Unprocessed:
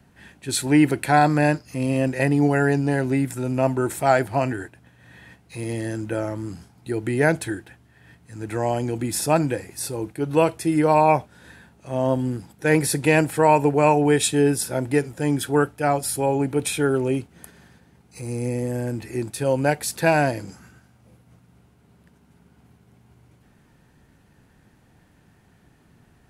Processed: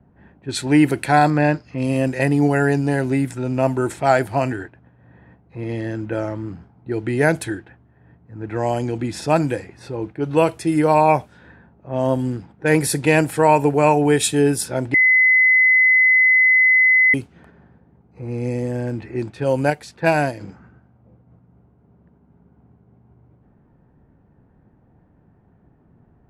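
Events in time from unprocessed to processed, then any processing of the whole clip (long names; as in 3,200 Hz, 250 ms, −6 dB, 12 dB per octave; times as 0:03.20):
0:01.30–0:01.78: Bessel low-pass filter 3,700 Hz
0:14.94–0:17.14: beep over 2,030 Hz −12.5 dBFS
0:19.70–0:20.41: expander for the loud parts, over −28 dBFS
whole clip: low-pass that shuts in the quiet parts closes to 860 Hz, open at −17.5 dBFS; level +2 dB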